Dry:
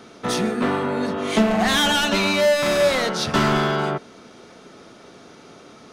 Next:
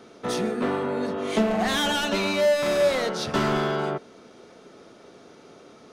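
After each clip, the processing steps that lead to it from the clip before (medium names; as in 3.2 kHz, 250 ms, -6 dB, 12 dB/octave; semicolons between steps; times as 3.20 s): peaking EQ 460 Hz +5 dB 1.3 oct; trim -6.5 dB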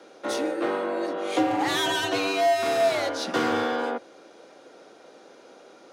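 frequency shift +95 Hz; trim -1 dB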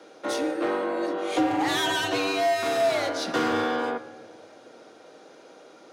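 simulated room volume 1800 m³, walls mixed, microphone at 0.52 m; saturation -13.5 dBFS, distortion -24 dB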